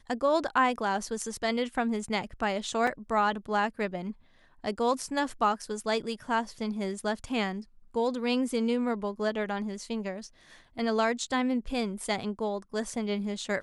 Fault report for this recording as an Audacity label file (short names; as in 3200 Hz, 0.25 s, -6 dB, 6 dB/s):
2.870000	2.870000	gap 4.1 ms